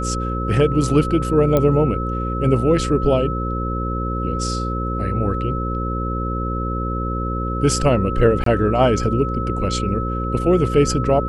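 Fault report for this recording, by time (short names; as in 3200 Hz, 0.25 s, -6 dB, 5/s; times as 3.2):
buzz 60 Hz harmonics 9 -24 dBFS
tone 1300 Hz -26 dBFS
1.57 pop -6 dBFS
8.44–8.46 gap 23 ms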